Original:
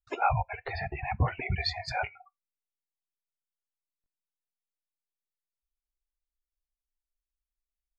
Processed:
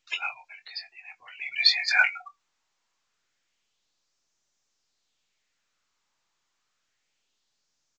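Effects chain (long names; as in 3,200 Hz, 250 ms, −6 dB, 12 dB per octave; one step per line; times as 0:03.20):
auto-filter high-pass sine 0.28 Hz 930–5,900 Hz
double-tracking delay 22 ms −8 dB
level +9 dB
mu-law 128 kbit/s 16,000 Hz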